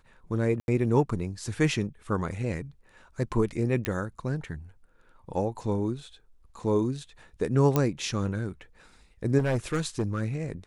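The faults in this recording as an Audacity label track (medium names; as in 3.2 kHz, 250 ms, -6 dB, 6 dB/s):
0.600000	0.680000	dropout 81 ms
3.850000	3.850000	pop -12 dBFS
7.760000	7.760000	pop -10 dBFS
9.380000	10.220000	clipped -22 dBFS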